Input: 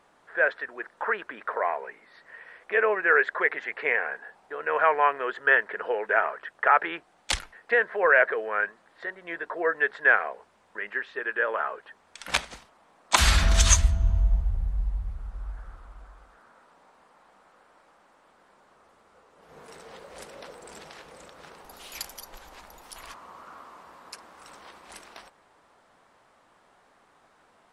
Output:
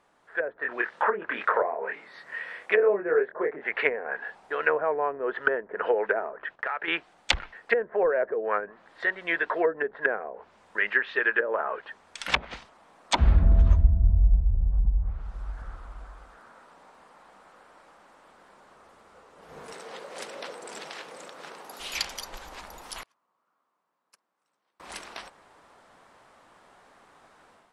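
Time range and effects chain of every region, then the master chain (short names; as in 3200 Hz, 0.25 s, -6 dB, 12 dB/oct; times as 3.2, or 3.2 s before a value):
0.57–3.67 HPF 91 Hz + doubler 25 ms -3.5 dB
6.32–6.88 LPF 2200 Hz 6 dB/oct + gate -59 dBFS, range -11 dB + compressor 4:1, threshold -36 dBFS
14.85–15.62 high shelf 9800 Hz +7 dB + three-band expander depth 70%
19.73–21.8 HPF 230 Hz + short-mantissa float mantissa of 4-bit
23.03–24.8 gate -38 dBFS, range -35 dB + HPF 120 Hz 24 dB/oct
whole clip: treble ducked by the level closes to 440 Hz, closed at -22 dBFS; AGC gain up to 9 dB; dynamic EQ 3000 Hz, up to +7 dB, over -41 dBFS, Q 0.74; gain -4.5 dB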